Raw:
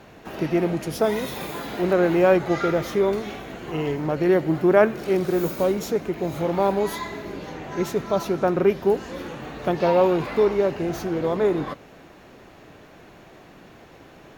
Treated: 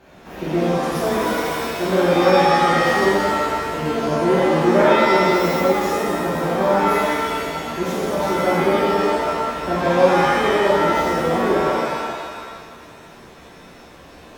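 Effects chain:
reverb with rising layers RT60 1.6 s, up +7 semitones, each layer −2 dB, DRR −7.5 dB
level −6.5 dB

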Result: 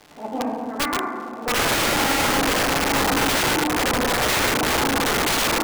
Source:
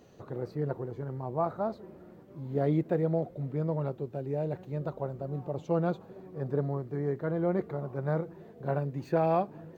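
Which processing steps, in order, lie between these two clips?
wrong playback speed 45 rpm record played at 78 rpm
mains-hum notches 60/120/180/240 Hz
feedback delay with all-pass diffusion 970 ms, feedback 50%, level −4 dB
noise gate −34 dBFS, range −8 dB
feedback delay network reverb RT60 1.7 s, low-frequency decay 1.5×, high-frequency decay 0.3×, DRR −2.5 dB
surface crackle 290 per second −35 dBFS
low-pass filter 3,600 Hz 6 dB per octave
wrap-around overflow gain 20.5 dB
parametric band 450 Hz +3 dB 0.68 octaves
level +4.5 dB

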